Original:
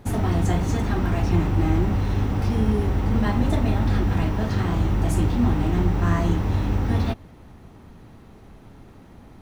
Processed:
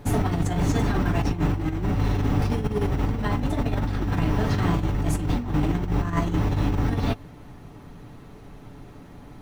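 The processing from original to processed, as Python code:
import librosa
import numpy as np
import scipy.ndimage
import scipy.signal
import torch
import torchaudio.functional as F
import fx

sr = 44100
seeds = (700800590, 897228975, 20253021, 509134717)

y = fx.over_compress(x, sr, threshold_db=-22.0, ratio=-0.5)
y = y + 0.42 * np.pad(y, (int(6.9 * sr / 1000.0), 0))[:len(y)]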